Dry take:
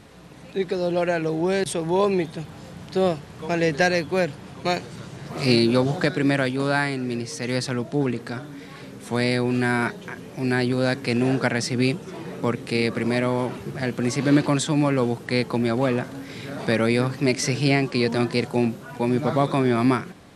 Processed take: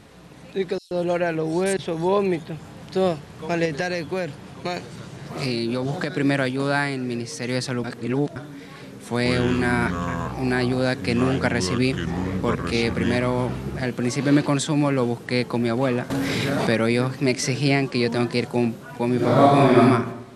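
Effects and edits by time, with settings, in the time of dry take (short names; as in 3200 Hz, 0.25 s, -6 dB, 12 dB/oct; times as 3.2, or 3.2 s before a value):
0.78–2.82 bands offset in time highs, lows 0.13 s, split 4700 Hz
3.65–6.17 compressor, threshold -20 dBFS
7.84–8.36 reverse
9.15–13.87 echoes that change speed 0.102 s, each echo -6 st, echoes 2, each echo -6 dB
16.1–16.75 fast leveller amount 70%
19.15–19.81 reverb throw, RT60 0.95 s, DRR -5.5 dB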